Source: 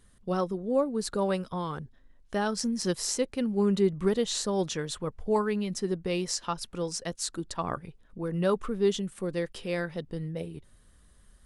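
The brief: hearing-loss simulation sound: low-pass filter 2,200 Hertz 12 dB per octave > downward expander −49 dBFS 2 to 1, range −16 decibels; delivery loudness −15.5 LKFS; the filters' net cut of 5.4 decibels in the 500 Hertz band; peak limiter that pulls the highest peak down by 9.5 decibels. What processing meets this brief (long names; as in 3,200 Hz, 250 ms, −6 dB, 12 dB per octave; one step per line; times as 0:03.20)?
parametric band 500 Hz −7 dB
brickwall limiter −22.5 dBFS
low-pass filter 2,200 Hz 12 dB per octave
downward expander −49 dBFS 2 to 1, range −16 dB
level +19.5 dB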